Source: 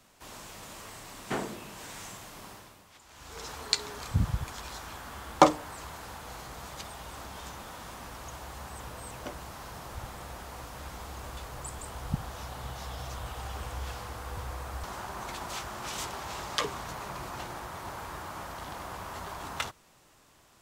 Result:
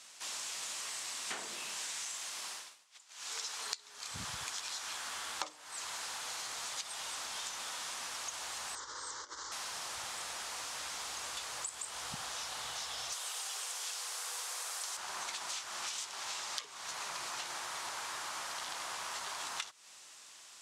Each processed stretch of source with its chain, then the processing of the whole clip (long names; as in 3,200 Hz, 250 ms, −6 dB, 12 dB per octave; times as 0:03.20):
0:02.05–0:03.66: low-shelf EQ 220 Hz −7.5 dB + downward expander −49 dBFS
0:08.75–0:09.52: Butterworth low-pass 7,200 Hz 48 dB per octave + compressor whose output falls as the input rises −43 dBFS, ratio −0.5 + phaser with its sweep stopped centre 690 Hz, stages 6
0:13.12–0:14.97: linear-phase brick-wall high-pass 330 Hz + high-shelf EQ 5,300 Hz +12 dB
whole clip: meter weighting curve ITU-R 468; downward compressor 16 to 1, threshold −37 dBFS